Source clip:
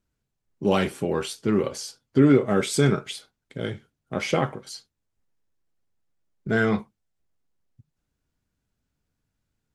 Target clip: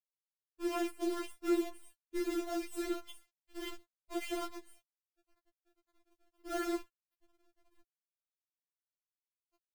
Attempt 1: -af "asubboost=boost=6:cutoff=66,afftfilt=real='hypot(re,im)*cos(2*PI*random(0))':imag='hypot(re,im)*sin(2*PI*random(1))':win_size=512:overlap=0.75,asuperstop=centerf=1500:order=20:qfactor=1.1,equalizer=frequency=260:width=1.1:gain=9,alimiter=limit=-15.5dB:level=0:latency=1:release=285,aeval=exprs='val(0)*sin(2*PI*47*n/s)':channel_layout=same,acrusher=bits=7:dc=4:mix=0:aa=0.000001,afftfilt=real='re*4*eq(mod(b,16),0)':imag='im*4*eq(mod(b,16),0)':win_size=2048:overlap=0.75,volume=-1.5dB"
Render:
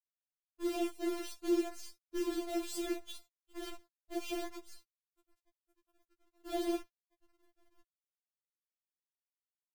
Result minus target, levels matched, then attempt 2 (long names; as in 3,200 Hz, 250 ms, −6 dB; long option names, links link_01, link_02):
2,000 Hz band −3.0 dB
-af "asubboost=boost=6:cutoff=66,afftfilt=real='hypot(re,im)*cos(2*PI*random(0))':imag='hypot(re,im)*sin(2*PI*random(1))':win_size=512:overlap=0.75,asuperstop=centerf=5300:order=20:qfactor=1.1,equalizer=frequency=260:width=1.1:gain=9,alimiter=limit=-15.5dB:level=0:latency=1:release=285,aeval=exprs='val(0)*sin(2*PI*47*n/s)':channel_layout=same,acrusher=bits=7:dc=4:mix=0:aa=0.000001,afftfilt=real='re*4*eq(mod(b,16),0)':imag='im*4*eq(mod(b,16),0)':win_size=2048:overlap=0.75,volume=-1.5dB"